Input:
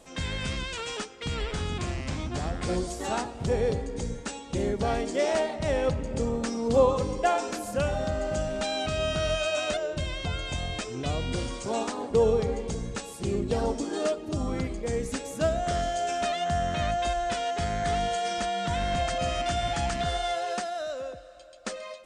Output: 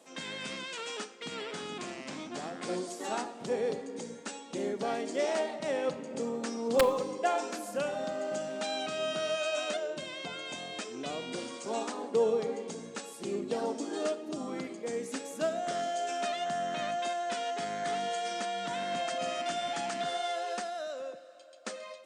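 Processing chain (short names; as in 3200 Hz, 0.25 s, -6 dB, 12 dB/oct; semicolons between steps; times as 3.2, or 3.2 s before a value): HPF 210 Hz 24 dB/oct; wrapped overs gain 11.5 dB; Schroeder reverb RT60 0.52 s, combs from 26 ms, DRR 15 dB; gain -4.5 dB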